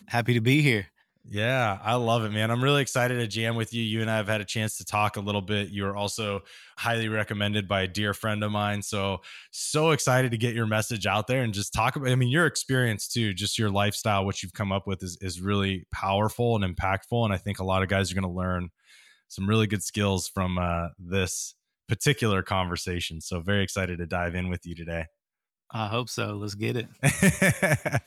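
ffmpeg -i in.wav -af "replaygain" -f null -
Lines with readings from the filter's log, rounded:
track_gain = +7.4 dB
track_peak = 0.291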